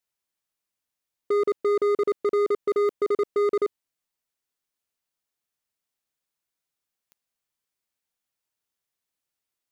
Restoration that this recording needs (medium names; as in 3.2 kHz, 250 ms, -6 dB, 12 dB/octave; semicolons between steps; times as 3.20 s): clip repair -20 dBFS; de-click